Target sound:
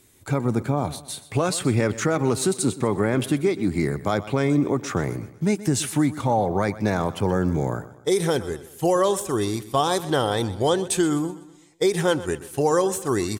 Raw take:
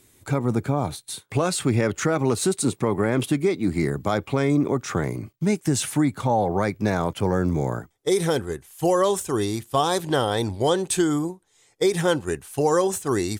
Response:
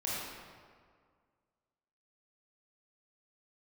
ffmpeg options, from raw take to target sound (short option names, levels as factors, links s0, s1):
-af "aecho=1:1:125|250|375|500:0.15|0.0658|0.029|0.0127"